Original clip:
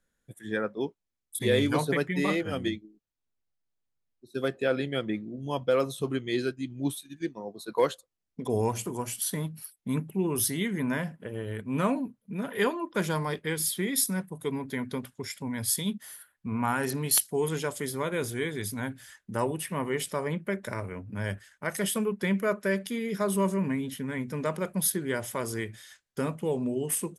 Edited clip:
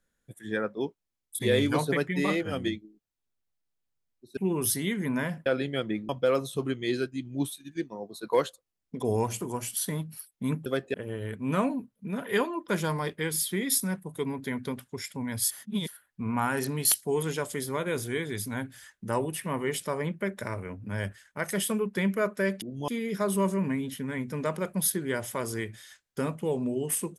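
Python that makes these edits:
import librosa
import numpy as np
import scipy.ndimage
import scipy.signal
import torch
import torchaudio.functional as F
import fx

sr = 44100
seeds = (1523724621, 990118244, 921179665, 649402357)

y = fx.edit(x, sr, fx.swap(start_s=4.37, length_s=0.28, other_s=10.11, other_length_s=1.09),
    fx.move(start_s=5.28, length_s=0.26, to_s=22.88),
    fx.reverse_span(start_s=15.77, length_s=0.37), tone=tone)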